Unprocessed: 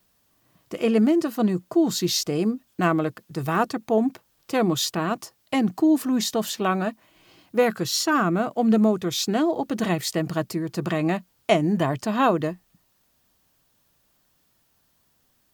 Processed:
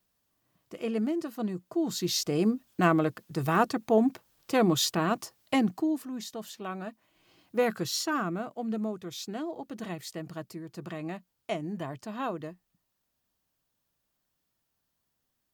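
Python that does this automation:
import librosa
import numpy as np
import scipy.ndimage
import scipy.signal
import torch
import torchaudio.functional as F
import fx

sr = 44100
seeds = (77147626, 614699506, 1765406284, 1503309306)

y = fx.gain(x, sr, db=fx.line((1.66, -10.5), (2.45, -2.0), (5.55, -2.0), (6.09, -14.5), (6.63, -14.5), (7.76, -5.0), (8.68, -13.5)))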